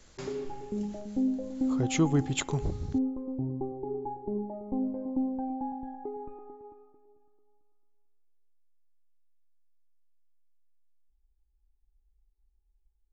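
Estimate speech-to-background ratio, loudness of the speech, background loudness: 4.5 dB, -30.0 LUFS, -34.5 LUFS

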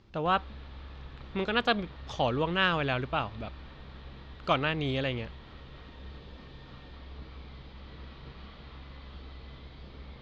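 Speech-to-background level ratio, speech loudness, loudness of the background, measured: 18.0 dB, -30.0 LUFS, -48.0 LUFS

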